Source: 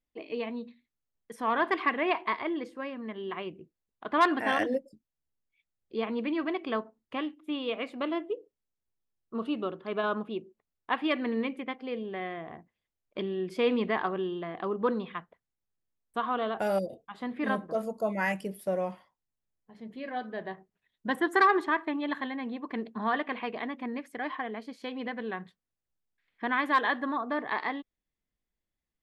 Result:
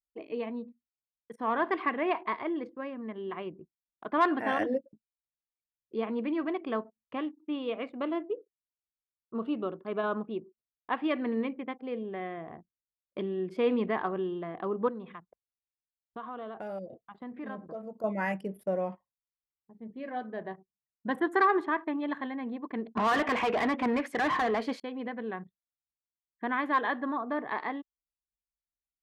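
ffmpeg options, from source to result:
ffmpeg -i in.wav -filter_complex "[0:a]asettb=1/sr,asplit=3[link_01][link_02][link_03];[link_01]atrim=end=14.884[link_04];[link_02]atrim=start=14.88:end=18.04,asetpts=PTS-STARTPTS,afade=type=in:duration=0.004:curve=qsin,afade=type=out:start_time=3.156:duration=0.004:curve=qsin,acompressor=threshold=-42dB:ratio=2:attack=3.2:release=140:knee=1:detection=peak[link_05];[link_03]atrim=start=18.036[link_06];[link_04][link_05]acrossfade=duration=0.004:curve1=hsin:curve2=qsin[link_07];[link_07][link_06]acrossfade=duration=0.004:curve1=qsin:curve2=hsin,asettb=1/sr,asplit=3[link_08][link_09][link_10];[link_08]atrim=end=22.974[link_11];[link_09]atrim=start=22.97:end=24.8,asetpts=PTS-STARTPTS,afade=type=in:duration=0.004:curve=qsin,afade=type=out:start_time=1.826:duration=0.004:curve=qsin,asplit=2[link_12][link_13];[link_13]highpass=frequency=720:poles=1,volume=26dB,asoftclip=type=tanh:threshold=-18dB[link_14];[link_12][link_14]amix=inputs=2:normalize=0,lowpass=frequency=6800:poles=1,volume=-6dB[link_15];[link_10]atrim=start=24.796[link_16];[link_11][link_15]acrossfade=duration=0.004:curve1=hsin:curve2=qsin[link_17];[link_17][link_16]acrossfade=duration=0.004:curve1=qsin:curve2=hsin,anlmdn=0.00398,highpass=58,highshelf=frequency=2500:gain=-11.5" out.wav

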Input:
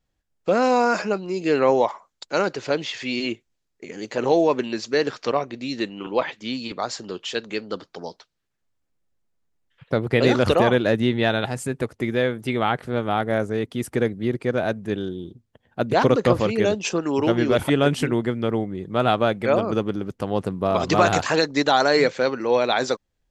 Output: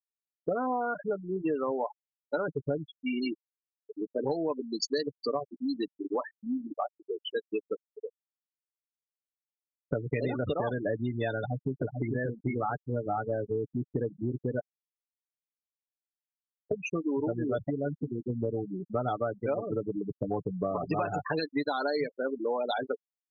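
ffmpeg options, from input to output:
ffmpeg -i in.wav -filter_complex "[0:a]asettb=1/sr,asplit=3[link_01][link_02][link_03];[link_01]atrim=end=2.484[link_04];[link_02]atrim=start=2.48:end=2.95,asetpts=PTS-STARTPTS,afade=type=in:duration=0.004:curve=qsin,afade=type=out:start_time=0.466:duration=0.004:curve=qsin,aemphasis=mode=reproduction:type=bsi[link_05];[link_03]atrim=start=2.946[link_06];[link_04][link_05]acrossfade=duration=0.004:curve1=hsin:curve2=qsin[link_07];[link_07][link_06]acrossfade=duration=0.004:curve1=qsin:curve2=hsin,asettb=1/sr,asplit=3[link_08][link_09][link_10];[link_08]atrim=end=4.284[link_11];[link_09]atrim=start=4.28:end=5.51,asetpts=PTS-STARTPTS,afade=type=in:duration=0.004:curve=qsin,afade=type=out:start_time=1.226:duration=0.004:curve=qsin,bass=frequency=250:gain=3,treble=frequency=4000:gain=15[link_12];[link_10]atrim=start=5.506[link_13];[link_11][link_12]acrossfade=duration=0.004:curve1=hsin:curve2=qsin[link_14];[link_14][link_13]acrossfade=duration=0.004:curve1=qsin:curve2=hsin,asplit=2[link_15][link_16];[link_16]afade=type=in:start_time=11.37:duration=0.01,afade=type=out:start_time=12.14:duration=0.01,aecho=0:1:440|880|1320|1760:0.668344|0.167086|0.0417715|0.0104429[link_17];[link_15][link_17]amix=inputs=2:normalize=0,asplit=5[link_18][link_19][link_20][link_21][link_22];[link_18]atrim=end=14.6,asetpts=PTS-STARTPTS,afade=type=out:start_time=14.596:duration=0.004:curve=hsin[link_23];[link_19]atrim=start=14.6:end=16.71,asetpts=PTS-STARTPTS,volume=0[link_24];[link_20]atrim=start=16.71:end=17.702,asetpts=PTS-STARTPTS,afade=type=in:duration=0.004:curve=hsin[link_25];[link_21]atrim=start=17.698:end=18.302,asetpts=PTS-STARTPTS,volume=-7dB[link_26];[link_22]atrim=start=18.298[link_27];[link_23][link_24][link_25]concat=n=3:v=0:a=1[link_28];[link_28][link_26]acrossfade=duration=0.004:curve1=hsin:curve2=hsin[link_29];[link_29][link_27]acrossfade=duration=0.004:curve1=hsin:curve2=hsin,afftfilt=real='re*gte(hypot(re,im),0.178)':imag='im*gte(hypot(re,im),0.178)':win_size=1024:overlap=0.75,aecho=1:1:6.9:0.52,acompressor=threshold=-28dB:ratio=6" out.wav

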